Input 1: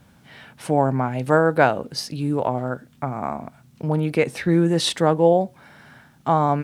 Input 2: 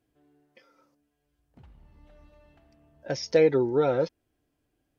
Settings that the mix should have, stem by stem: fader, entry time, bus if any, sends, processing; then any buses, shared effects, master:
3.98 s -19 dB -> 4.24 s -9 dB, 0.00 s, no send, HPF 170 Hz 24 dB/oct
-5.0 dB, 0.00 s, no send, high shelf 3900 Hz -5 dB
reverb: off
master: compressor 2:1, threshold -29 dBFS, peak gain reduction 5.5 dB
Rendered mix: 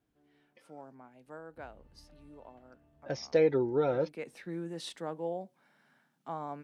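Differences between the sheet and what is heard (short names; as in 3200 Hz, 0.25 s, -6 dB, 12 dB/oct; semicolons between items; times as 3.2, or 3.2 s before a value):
stem 1 -19.0 dB -> -30.0 dB; master: missing compressor 2:1, threshold -29 dBFS, peak gain reduction 5.5 dB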